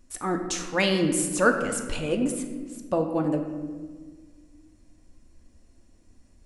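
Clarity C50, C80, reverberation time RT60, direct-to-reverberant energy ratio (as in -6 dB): 6.5 dB, 8.0 dB, 1.6 s, 4.0 dB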